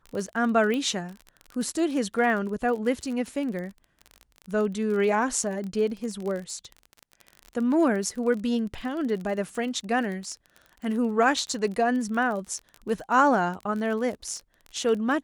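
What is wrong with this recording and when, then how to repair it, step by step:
crackle 33 per s -32 dBFS
0.74 s: pop -17 dBFS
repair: de-click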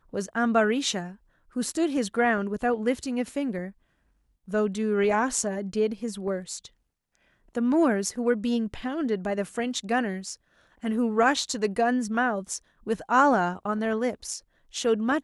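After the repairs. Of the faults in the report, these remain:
nothing left

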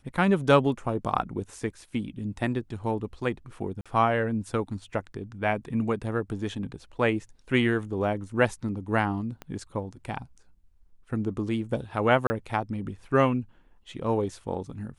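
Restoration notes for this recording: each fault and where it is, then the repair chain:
3.81–3.86 s: dropout 46 ms
9.42 s: pop -24 dBFS
12.27–12.30 s: dropout 30 ms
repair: de-click; interpolate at 3.81 s, 46 ms; interpolate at 12.27 s, 30 ms

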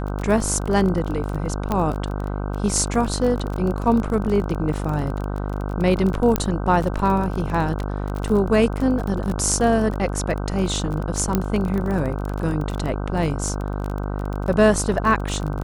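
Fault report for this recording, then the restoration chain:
buzz 50 Hz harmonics 31 -26 dBFS
crackle 27 per s -25 dBFS
1.72 s: pop -10 dBFS
6.36 s: pop -4 dBFS
11.35 s: pop -6 dBFS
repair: de-click; de-hum 50 Hz, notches 31

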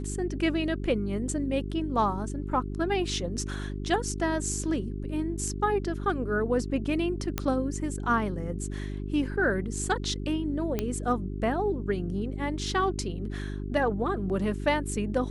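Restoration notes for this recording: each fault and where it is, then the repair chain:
hum 50 Hz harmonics 8 -34 dBFS
7.38 s: pop -12 dBFS
10.79 s: pop -14 dBFS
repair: de-click; de-hum 50 Hz, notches 8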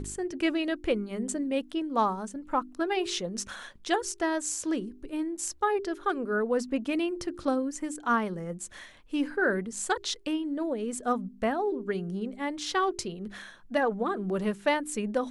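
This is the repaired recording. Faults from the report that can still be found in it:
nothing left

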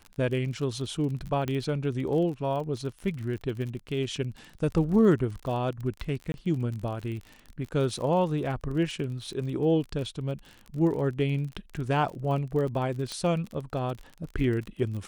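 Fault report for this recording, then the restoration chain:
crackle 39 per s -35 dBFS
1.48 s: pop -18 dBFS
6.32–6.34 s: dropout 21 ms
13.12 s: pop -20 dBFS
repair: de-click; interpolate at 6.32 s, 21 ms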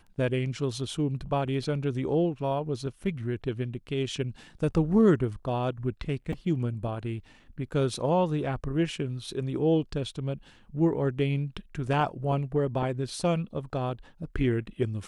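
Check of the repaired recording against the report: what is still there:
nothing left

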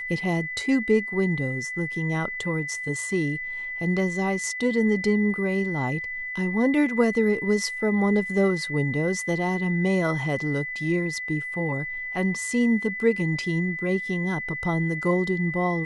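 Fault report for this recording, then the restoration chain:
whine 2 kHz -30 dBFS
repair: band-stop 2 kHz, Q 30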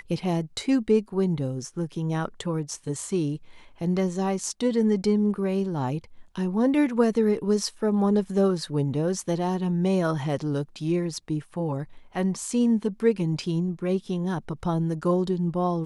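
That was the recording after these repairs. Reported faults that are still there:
nothing left

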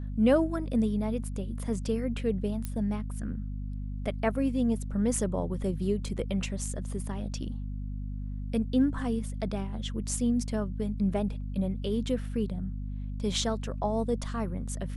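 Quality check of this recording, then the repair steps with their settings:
hum 50 Hz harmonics 5 -35 dBFS
2.65 s: pop -19 dBFS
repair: de-click; de-hum 50 Hz, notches 5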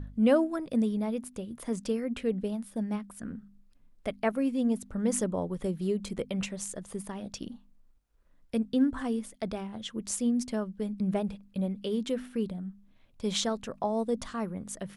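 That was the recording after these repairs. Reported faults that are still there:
nothing left

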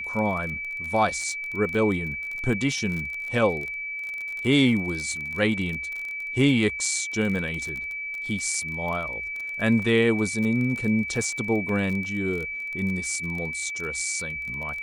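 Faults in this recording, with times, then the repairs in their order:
crackle 27 per s -30 dBFS
whine 2.3 kHz -30 dBFS
11.69 s: dropout 2.6 ms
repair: de-click; band-stop 2.3 kHz, Q 30; interpolate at 11.69 s, 2.6 ms

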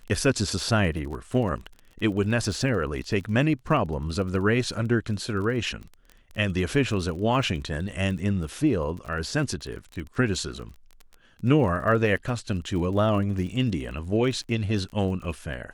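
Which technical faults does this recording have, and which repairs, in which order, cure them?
crackle 26 per s -34 dBFS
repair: de-click

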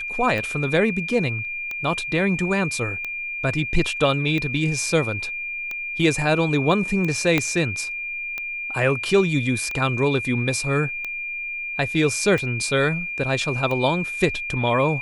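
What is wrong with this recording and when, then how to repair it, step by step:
tick 45 rpm
whine 2.4 kHz -27 dBFS
7.38 s: pop -6 dBFS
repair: de-click; band-stop 2.4 kHz, Q 30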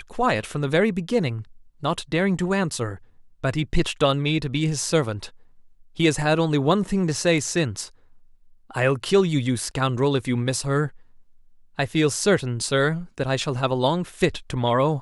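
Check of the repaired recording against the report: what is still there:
7.38 s: pop

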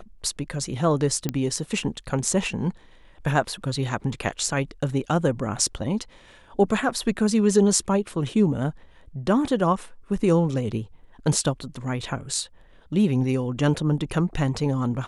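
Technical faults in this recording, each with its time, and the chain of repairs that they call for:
1.29 s: pop -11 dBFS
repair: de-click

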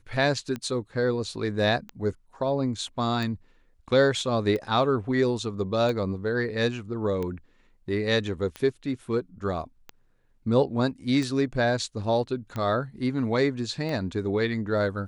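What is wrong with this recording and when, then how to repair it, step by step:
tick 45 rpm -20 dBFS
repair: de-click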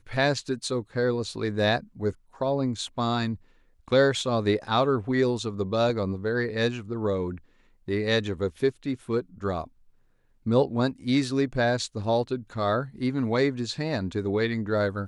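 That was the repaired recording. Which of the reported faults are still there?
nothing left

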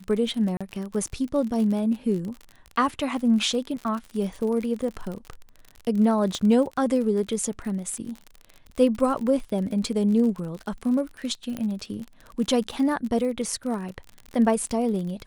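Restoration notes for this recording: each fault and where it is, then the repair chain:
crackle 43 per s -31 dBFS
0.57–0.61 s: dropout 36 ms
6.35 s: pop -16 dBFS
11.57 s: pop -18 dBFS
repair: de-click; interpolate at 0.57 s, 36 ms

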